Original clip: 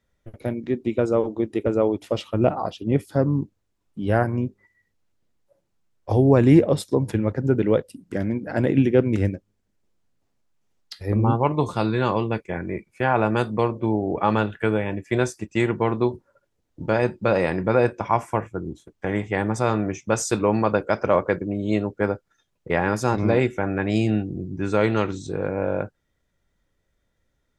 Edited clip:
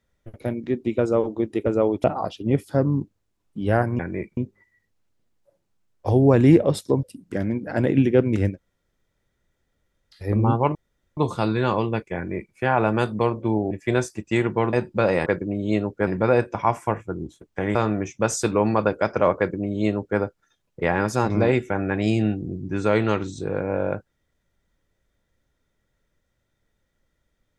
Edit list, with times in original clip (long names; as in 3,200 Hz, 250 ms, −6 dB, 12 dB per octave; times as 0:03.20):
0:02.04–0:02.45: remove
0:07.06–0:07.83: remove
0:09.34–0:10.96: fill with room tone, crossfade 0.10 s
0:11.55: splice in room tone 0.42 s
0:12.54–0:12.92: duplicate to 0:04.40
0:14.09–0:14.95: remove
0:15.97–0:17.00: remove
0:19.21–0:19.63: remove
0:21.26–0:22.07: duplicate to 0:17.53